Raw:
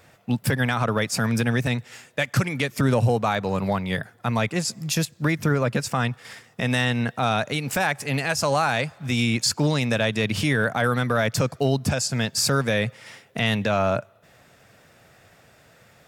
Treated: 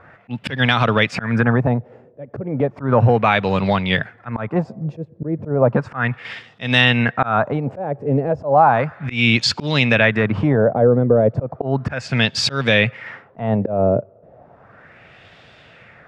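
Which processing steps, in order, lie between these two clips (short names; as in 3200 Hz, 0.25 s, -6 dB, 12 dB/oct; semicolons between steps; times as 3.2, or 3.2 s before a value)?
LFO low-pass sine 0.34 Hz 460–3500 Hz; auto swell 0.176 s; gain +6 dB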